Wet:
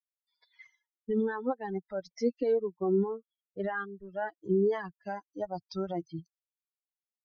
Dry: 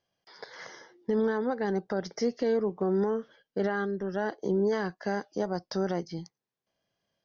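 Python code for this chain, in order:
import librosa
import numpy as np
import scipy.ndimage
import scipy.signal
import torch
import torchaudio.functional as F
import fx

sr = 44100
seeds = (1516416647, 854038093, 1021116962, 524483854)

y = fx.bin_expand(x, sr, power=3.0)
y = fx.lowpass(y, sr, hz=2400.0, slope=6)
y = y * librosa.db_to_amplitude(4.0)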